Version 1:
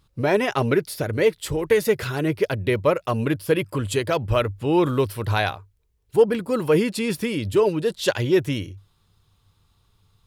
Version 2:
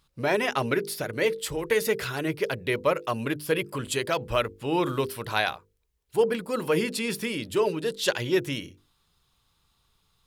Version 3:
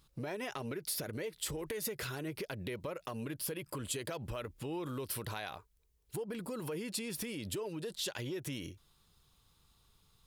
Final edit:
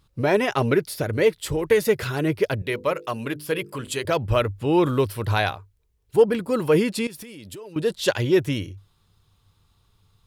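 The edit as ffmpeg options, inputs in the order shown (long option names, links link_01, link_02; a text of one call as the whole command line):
ffmpeg -i take0.wav -i take1.wav -i take2.wav -filter_complex "[0:a]asplit=3[link_01][link_02][link_03];[link_01]atrim=end=2.622[link_04];[1:a]atrim=start=2.618:end=4.052[link_05];[link_02]atrim=start=4.048:end=7.072[link_06];[2:a]atrim=start=7.068:end=7.762[link_07];[link_03]atrim=start=7.758[link_08];[link_04][link_05]acrossfade=duration=0.004:curve1=hsin:curve2=hsin[link_09];[link_09][link_06]acrossfade=duration=0.004:curve1=hsin:curve2=hsin[link_10];[link_10][link_07]acrossfade=duration=0.004:curve1=hsin:curve2=hsin[link_11];[link_11][link_08]acrossfade=duration=0.004:curve1=hsin:curve2=hsin" out.wav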